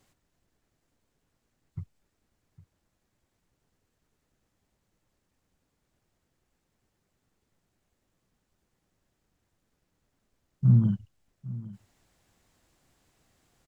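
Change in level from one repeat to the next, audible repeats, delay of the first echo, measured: no steady repeat, 1, 0.807 s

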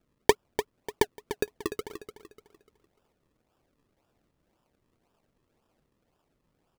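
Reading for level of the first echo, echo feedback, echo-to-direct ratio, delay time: -10.5 dB, 34%, -10.0 dB, 0.296 s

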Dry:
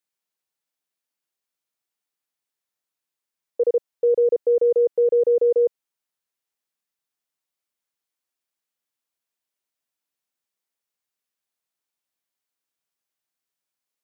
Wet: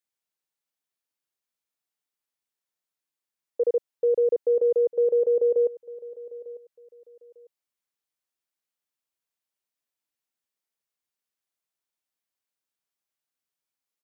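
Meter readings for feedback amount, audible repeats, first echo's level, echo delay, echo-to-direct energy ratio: 26%, 2, -18.5 dB, 0.899 s, -18.0 dB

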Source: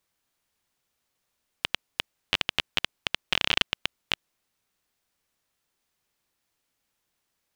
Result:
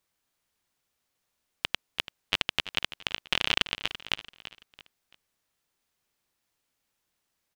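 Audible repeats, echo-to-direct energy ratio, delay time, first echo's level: 3, -13.5 dB, 0.336 s, -14.0 dB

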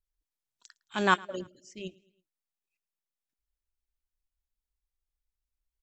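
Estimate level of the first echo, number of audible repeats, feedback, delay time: -24.0 dB, 2, 50%, 0.109 s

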